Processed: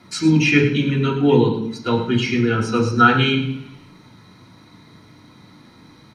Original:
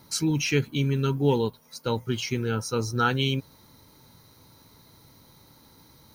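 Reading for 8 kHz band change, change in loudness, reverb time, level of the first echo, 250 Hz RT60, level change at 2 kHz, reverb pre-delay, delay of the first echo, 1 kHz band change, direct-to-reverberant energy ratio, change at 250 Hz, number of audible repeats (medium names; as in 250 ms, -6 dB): -1.0 dB, +9.0 dB, 0.70 s, -11.5 dB, 0.90 s, +11.5 dB, 3 ms, 108 ms, +10.5 dB, -3.0 dB, +11.0 dB, 1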